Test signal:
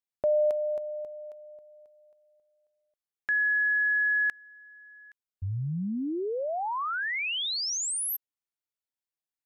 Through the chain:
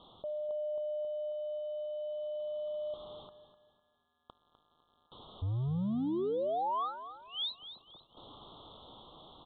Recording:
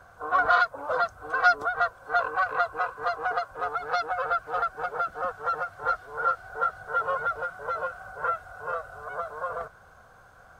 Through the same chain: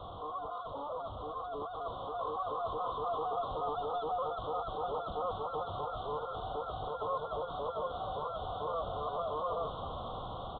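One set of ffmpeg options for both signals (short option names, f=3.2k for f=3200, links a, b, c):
-filter_complex "[0:a]aeval=exprs='val(0)+0.5*0.0224*sgn(val(0))':c=same,areverse,acompressor=threshold=-34dB:ratio=6:attack=16:release=31:knee=6:detection=rms,areverse,asuperstop=centerf=2000:order=12:qfactor=1,aresample=8000,aresample=44100,asplit=2[a][b];[b]aecho=0:1:252|504|756|1008:0.237|0.083|0.029|0.0102[c];[a][c]amix=inputs=2:normalize=0,dynaudnorm=f=610:g=7:m=5.5dB,volume=-4.5dB"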